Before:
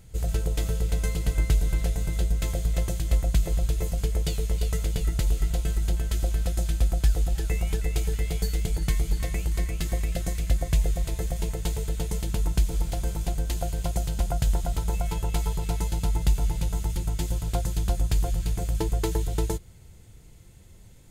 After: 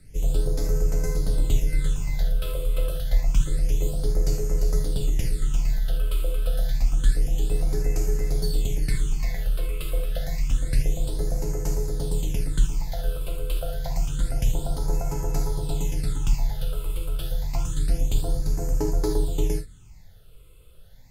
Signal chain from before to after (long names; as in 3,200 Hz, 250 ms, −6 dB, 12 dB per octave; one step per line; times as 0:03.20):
reverb whose tail is shaped and stops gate 100 ms flat, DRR 1.5 dB
all-pass phaser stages 8, 0.28 Hz, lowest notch 240–3,400 Hz
frequency shifter −19 Hz